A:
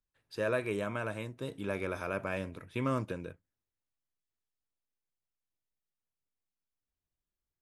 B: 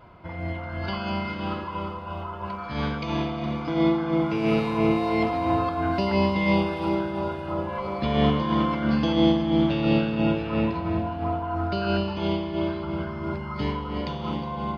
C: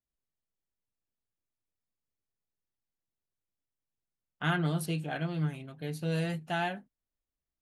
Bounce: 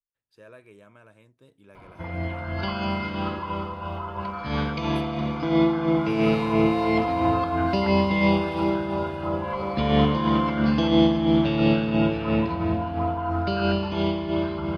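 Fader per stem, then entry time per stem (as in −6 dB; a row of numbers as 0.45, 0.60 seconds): −16.5, +1.5, −18.5 decibels; 0.00, 1.75, 0.15 seconds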